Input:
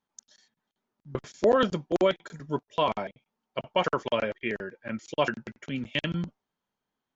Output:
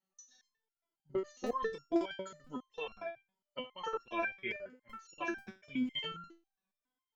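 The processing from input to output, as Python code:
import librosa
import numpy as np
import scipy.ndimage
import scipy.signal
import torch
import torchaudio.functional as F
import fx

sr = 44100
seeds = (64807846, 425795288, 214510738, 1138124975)

y = fx.spec_ripple(x, sr, per_octave=1.7, drift_hz=-0.81, depth_db=14)
y = fx.buffer_crackle(y, sr, first_s=0.48, period_s=0.49, block=128, kind='repeat')
y = fx.resonator_held(y, sr, hz=7.3, low_hz=190.0, high_hz=1400.0)
y = y * librosa.db_to_amplitude(5.0)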